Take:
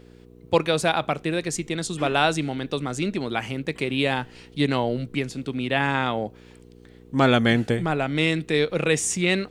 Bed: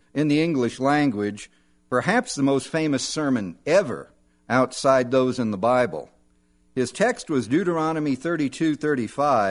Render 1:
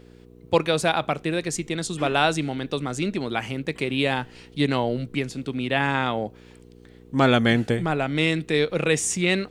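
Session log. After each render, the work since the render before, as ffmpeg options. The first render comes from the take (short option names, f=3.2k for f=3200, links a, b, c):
-af anull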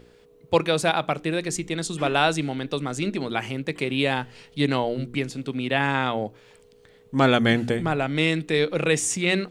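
-af "bandreject=f=60:t=h:w=4,bandreject=f=120:t=h:w=4,bandreject=f=180:t=h:w=4,bandreject=f=240:t=h:w=4,bandreject=f=300:t=h:w=4,bandreject=f=360:t=h:w=4"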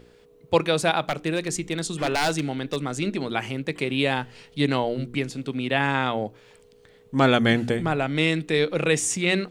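-filter_complex "[0:a]asettb=1/sr,asplit=3[a][b][c];[a]atrim=end=1.014[d];[b]atrim=start=1.01:end=2.82,asetpts=PTS-STARTPTS,afade=t=in:d=0.004:c=qsin,afade=t=out:st=1.806:d=0.004:c=qsin,aeval=exprs='0.158*(abs(mod(val(0)/0.158+3,4)-2)-1)':c=same[e];[c]atrim=start=2.816[f];[d][e]acrossfade=d=0.004:c1=hsin:c2=qsin[g];[g][f]acrossfade=d=0.004:c1=qsin:c2=hsin"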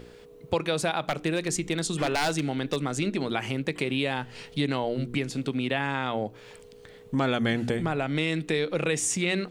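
-filter_complex "[0:a]asplit=2[a][b];[b]alimiter=limit=-14.5dB:level=0:latency=1,volume=-2dB[c];[a][c]amix=inputs=2:normalize=0,acompressor=threshold=-27dB:ratio=2.5"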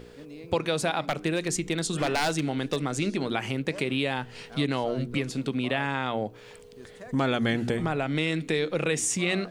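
-filter_complex "[1:a]volume=-24.5dB[a];[0:a][a]amix=inputs=2:normalize=0"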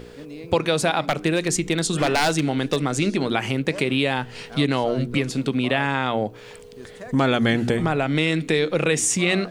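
-af "volume=6dB"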